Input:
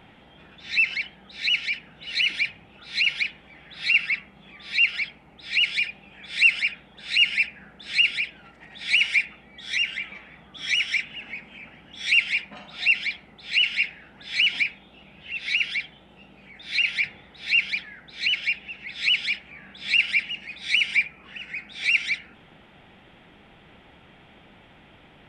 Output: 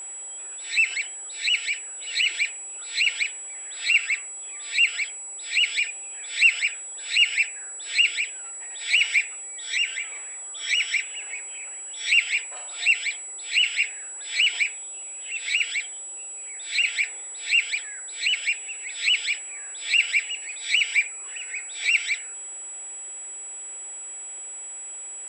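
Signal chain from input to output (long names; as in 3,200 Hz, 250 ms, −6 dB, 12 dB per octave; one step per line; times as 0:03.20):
steady tone 7,800 Hz −34 dBFS
Butterworth high-pass 350 Hz 96 dB per octave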